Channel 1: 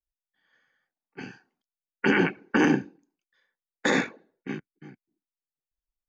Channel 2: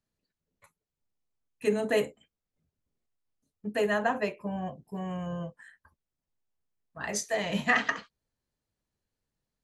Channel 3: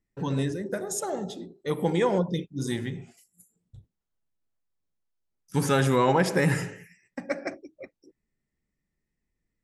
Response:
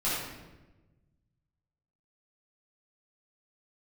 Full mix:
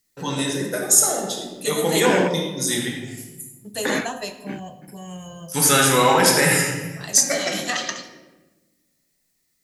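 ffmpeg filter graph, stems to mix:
-filter_complex "[0:a]volume=0.944[s0];[1:a]aexciter=amount=6.5:drive=7.9:freq=3300,volume=0.668,asplit=3[s1][s2][s3];[s2]volume=0.158[s4];[2:a]crystalizer=i=4.5:c=0,highpass=f=330:p=1,volume=1,asplit=2[s5][s6];[s6]volume=0.562[s7];[s3]apad=whole_len=268528[s8];[s0][s8]sidechaingate=range=0.0224:threshold=0.002:ratio=16:detection=peak[s9];[3:a]atrim=start_sample=2205[s10];[s4][s7]amix=inputs=2:normalize=0[s11];[s11][s10]afir=irnorm=-1:irlink=0[s12];[s9][s1][s5][s12]amix=inputs=4:normalize=0"

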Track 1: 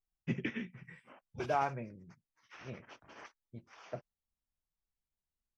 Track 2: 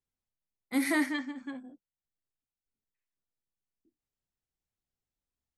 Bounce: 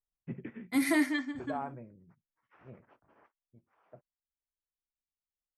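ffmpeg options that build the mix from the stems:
-filter_complex "[0:a]lowpass=1300,volume=0.562,afade=t=out:st=2.76:d=0.58:silence=0.446684[s0];[1:a]agate=range=0.0224:threshold=0.00251:ratio=3:detection=peak,aecho=1:1:2.9:0.47,volume=0.891[s1];[s0][s1]amix=inputs=2:normalize=0"

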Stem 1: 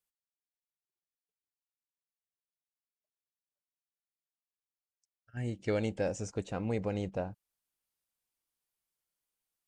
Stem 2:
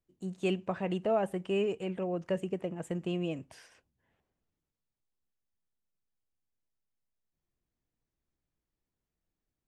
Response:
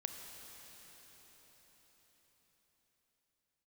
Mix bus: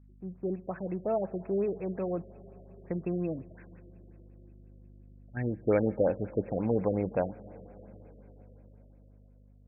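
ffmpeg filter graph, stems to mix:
-filter_complex "[0:a]highpass=f=170:p=1,aeval=exprs='val(0)+0.00126*(sin(2*PI*50*n/s)+sin(2*PI*2*50*n/s)/2+sin(2*PI*3*50*n/s)/3+sin(2*PI*4*50*n/s)/4+sin(2*PI*5*50*n/s)/5)':c=same,volume=1.19,asplit=2[s0][s1];[s1]volume=0.282[s2];[1:a]volume=0.631,asplit=3[s3][s4][s5];[s3]atrim=end=2.22,asetpts=PTS-STARTPTS,afade=t=out:st=2.216:d=0.004:c=hsin[s6];[s4]atrim=start=2.22:end=2.84,asetpts=PTS-STARTPTS,volume=0[s7];[s5]atrim=start=2.84,asetpts=PTS-STARTPTS,afade=t=in:d=0.004:c=hsin[s8];[s6][s7][s8]concat=n=3:v=0:a=1,asplit=2[s9][s10];[s10]volume=0.251[s11];[2:a]atrim=start_sample=2205[s12];[s2][s11]amix=inputs=2:normalize=0[s13];[s13][s12]afir=irnorm=-1:irlink=0[s14];[s0][s9][s14]amix=inputs=3:normalize=0,dynaudnorm=f=240:g=11:m=1.58,afftfilt=real='re*lt(b*sr/1024,650*pow(2700/650,0.5+0.5*sin(2*PI*5.6*pts/sr)))':imag='im*lt(b*sr/1024,650*pow(2700/650,0.5+0.5*sin(2*PI*5.6*pts/sr)))':win_size=1024:overlap=0.75"

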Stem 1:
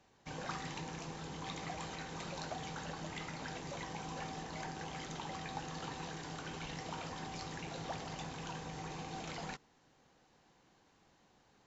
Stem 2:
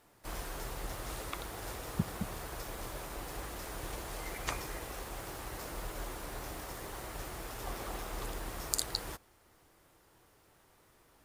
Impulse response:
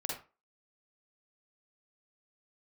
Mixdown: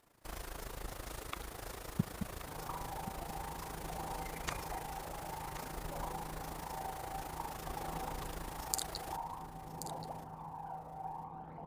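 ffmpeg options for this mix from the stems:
-filter_complex "[0:a]lowpass=f=900:t=q:w=3.8,aphaser=in_gain=1:out_gain=1:delay=1.6:decay=0.5:speed=0.52:type=triangular,adelay=2200,volume=0.237,asplit=2[s0][s1];[s1]volume=0.562[s2];[1:a]tremolo=f=27:d=0.75,volume=0.891,asplit=2[s3][s4];[s4]volume=0.266[s5];[2:a]atrim=start_sample=2205[s6];[s2][s6]afir=irnorm=-1:irlink=0[s7];[s5]aecho=0:1:1079:1[s8];[s0][s3][s7][s8]amix=inputs=4:normalize=0"

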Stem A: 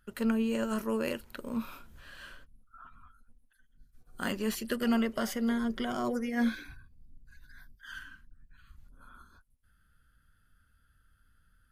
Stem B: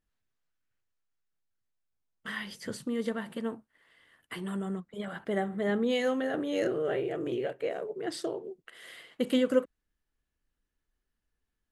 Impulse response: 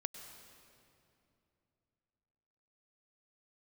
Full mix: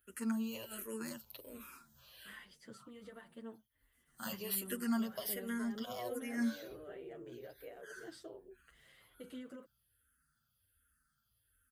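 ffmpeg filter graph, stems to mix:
-filter_complex "[0:a]aemphasis=mode=production:type=75kf,asplit=2[s0][s1];[s1]afreqshift=-1.3[s2];[s0][s2]amix=inputs=2:normalize=1,volume=0.531[s3];[1:a]alimiter=limit=0.0631:level=0:latency=1:release=24,volume=0.211[s4];[s3][s4]amix=inputs=2:normalize=0,highpass=f=42:w=0.5412,highpass=f=42:w=1.3066,asplit=2[s5][s6];[s6]adelay=7.9,afreqshift=-1.3[s7];[s5][s7]amix=inputs=2:normalize=1"

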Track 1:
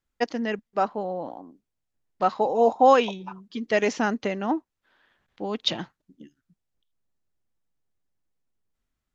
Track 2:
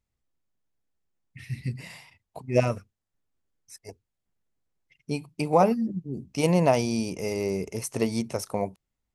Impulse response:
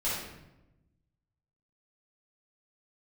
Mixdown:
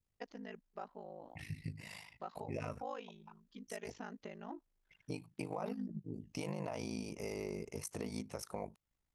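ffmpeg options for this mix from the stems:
-filter_complex "[0:a]volume=0.15[s0];[1:a]adynamicequalizer=threshold=0.01:dfrequency=1400:dqfactor=0.92:tfrequency=1400:tqfactor=0.92:attack=5:release=100:ratio=0.375:range=2.5:mode=boostabove:tftype=bell,alimiter=limit=0.158:level=0:latency=1:release=34,volume=0.891,asplit=2[s1][s2];[s2]apad=whole_len=403130[s3];[s0][s3]sidechaincompress=threshold=0.0251:ratio=8:attack=16:release=114[s4];[s4][s1]amix=inputs=2:normalize=0,aeval=exprs='val(0)*sin(2*PI*26*n/s)':c=same,acompressor=threshold=0.00708:ratio=2.5"

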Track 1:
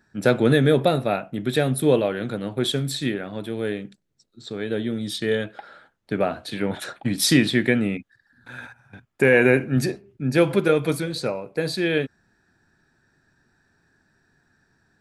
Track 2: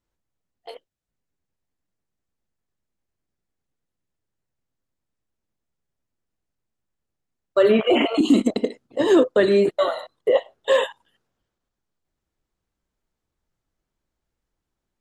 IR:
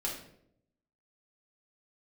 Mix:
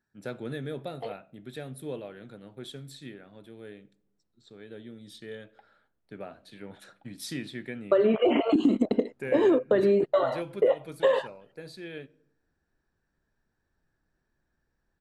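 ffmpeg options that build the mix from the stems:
-filter_complex "[0:a]volume=0.112,asplit=2[s0][s1];[s1]volume=0.0944[s2];[1:a]lowpass=f=1200:p=1,adelay=350,volume=1.33[s3];[2:a]atrim=start_sample=2205[s4];[s2][s4]afir=irnorm=-1:irlink=0[s5];[s0][s3][s5]amix=inputs=3:normalize=0,acompressor=threshold=0.112:ratio=6"

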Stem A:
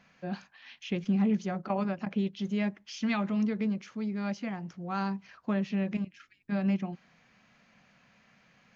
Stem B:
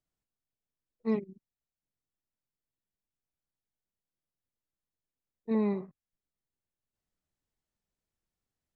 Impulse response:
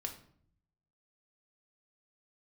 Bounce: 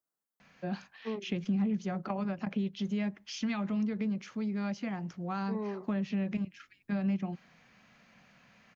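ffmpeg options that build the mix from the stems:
-filter_complex "[0:a]adelay=400,volume=1.19[s0];[1:a]highpass=250,highshelf=f=1900:t=q:w=1.5:g=-10.5,crystalizer=i=3.5:c=0,volume=0.75[s1];[s0][s1]amix=inputs=2:normalize=0,acrossover=split=160[s2][s3];[s3]acompressor=threshold=0.0224:ratio=6[s4];[s2][s4]amix=inputs=2:normalize=0"

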